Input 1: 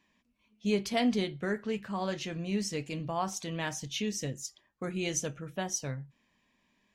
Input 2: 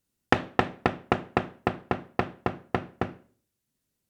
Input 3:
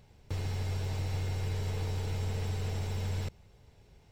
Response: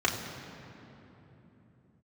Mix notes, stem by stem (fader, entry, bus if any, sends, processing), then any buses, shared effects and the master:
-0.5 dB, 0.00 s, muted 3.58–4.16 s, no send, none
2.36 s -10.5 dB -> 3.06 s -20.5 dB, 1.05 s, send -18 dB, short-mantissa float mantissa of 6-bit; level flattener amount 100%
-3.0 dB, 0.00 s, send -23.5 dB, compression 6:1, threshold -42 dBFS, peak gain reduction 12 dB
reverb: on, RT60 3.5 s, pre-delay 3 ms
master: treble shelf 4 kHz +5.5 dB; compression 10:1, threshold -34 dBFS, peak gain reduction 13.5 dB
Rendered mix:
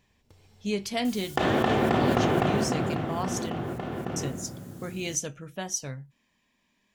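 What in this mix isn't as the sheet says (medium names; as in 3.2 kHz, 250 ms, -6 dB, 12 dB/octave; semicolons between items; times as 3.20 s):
stem 2: send -18 dB -> -12 dB; stem 3 -3.0 dB -> -12.0 dB; master: missing compression 10:1, threshold -34 dBFS, peak gain reduction 13.5 dB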